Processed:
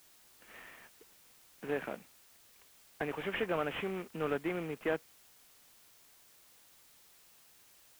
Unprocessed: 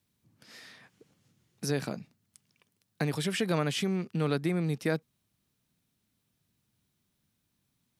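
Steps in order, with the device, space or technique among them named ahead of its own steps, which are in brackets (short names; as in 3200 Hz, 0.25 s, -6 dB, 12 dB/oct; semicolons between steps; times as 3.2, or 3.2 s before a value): army field radio (BPF 380–3100 Hz; CVSD 16 kbps; white noise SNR 21 dB)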